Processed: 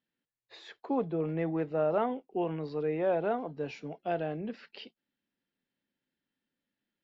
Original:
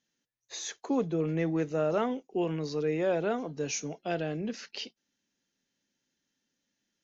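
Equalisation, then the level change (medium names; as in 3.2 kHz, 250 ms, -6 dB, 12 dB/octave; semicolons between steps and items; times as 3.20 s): dynamic bell 790 Hz, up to +7 dB, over -44 dBFS, Q 1.4; boxcar filter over 7 samples; -3.5 dB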